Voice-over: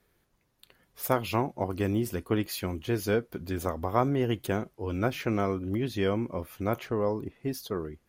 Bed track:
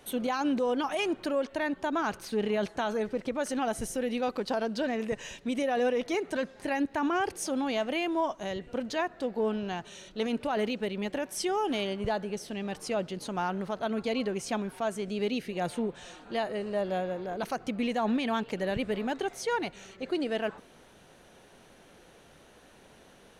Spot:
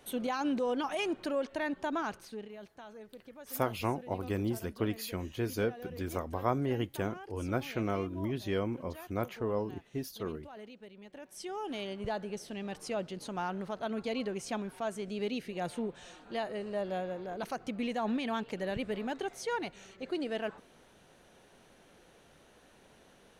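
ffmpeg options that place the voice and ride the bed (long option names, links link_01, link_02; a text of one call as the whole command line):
ffmpeg -i stem1.wav -i stem2.wav -filter_complex "[0:a]adelay=2500,volume=-5dB[link_01];[1:a]volume=11dB,afade=type=out:start_time=1.92:duration=0.57:silence=0.16788,afade=type=in:start_time=11.07:duration=1.16:silence=0.188365[link_02];[link_01][link_02]amix=inputs=2:normalize=0" out.wav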